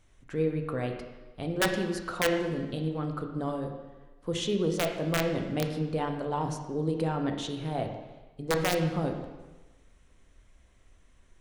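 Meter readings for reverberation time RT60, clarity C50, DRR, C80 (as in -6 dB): 1.2 s, 6.0 dB, 3.5 dB, 8.0 dB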